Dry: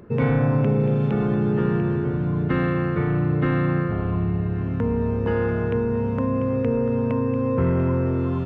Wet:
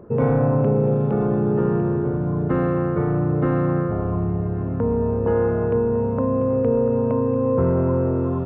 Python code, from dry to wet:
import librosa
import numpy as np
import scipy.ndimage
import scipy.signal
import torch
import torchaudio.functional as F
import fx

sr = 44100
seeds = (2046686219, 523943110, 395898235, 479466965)

y = fx.curve_eq(x, sr, hz=(220.0, 610.0, 1300.0, 2000.0, 3400.0), db=(0, 6, 0, -10, -13))